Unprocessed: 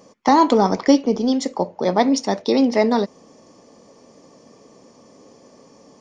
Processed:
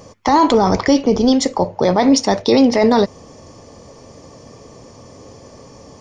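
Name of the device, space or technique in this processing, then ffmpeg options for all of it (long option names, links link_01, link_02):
car stereo with a boomy subwoofer: -af "lowshelf=frequency=140:width_type=q:width=1.5:gain=12.5,alimiter=limit=-12.5dB:level=0:latency=1:release=11,volume=8.5dB"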